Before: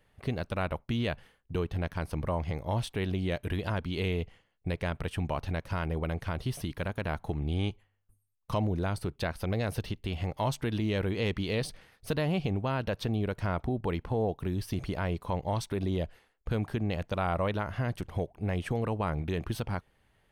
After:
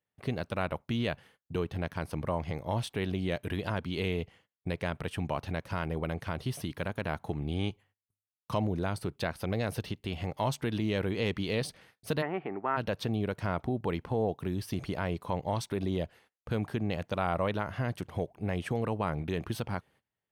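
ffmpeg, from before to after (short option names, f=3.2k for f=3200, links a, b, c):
-filter_complex "[0:a]asplit=3[a][b][c];[a]afade=t=out:st=12.21:d=0.02[d];[b]highpass=350,equalizer=f=360:t=q:w=4:g=6,equalizer=f=530:t=q:w=4:g=-7,equalizer=f=860:t=q:w=4:g=4,equalizer=f=1.3k:t=q:w=4:g=7,equalizer=f=1.9k:t=q:w=4:g=9,lowpass=f=2k:w=0.5412,lowpass=f=2k:w=1.3066,afade=t=in:st=12.21:d=0.02,afade=t=out:st=12.76:d=0.02[e];[c]afade=t=in:st=12.76:d=0.02[f];[d][e][f]amix=inputs=3:normalize=0,agate=range=-21dB:threshold=-57dB:ratio=16:detection=peak,highpass=100"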